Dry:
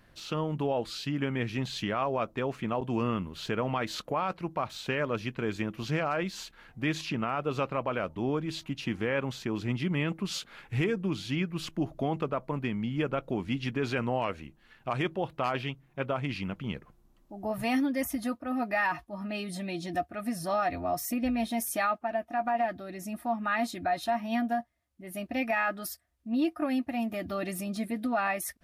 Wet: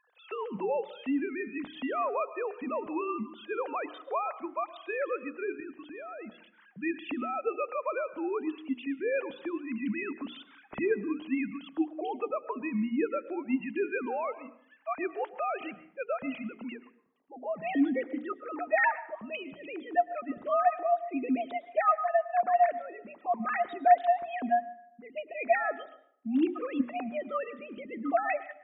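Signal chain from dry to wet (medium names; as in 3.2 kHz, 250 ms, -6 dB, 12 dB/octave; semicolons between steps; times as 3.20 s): formants replaced by sine waves; 5.60–6.32 s: level held to a coarse grid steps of 14 dB; hum notches 60/120/180/240/300/360/420 Hz; plate-style reverb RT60 0.65 s, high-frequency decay 0.6×, pre-delay 95 ms, DRR 15.5 dB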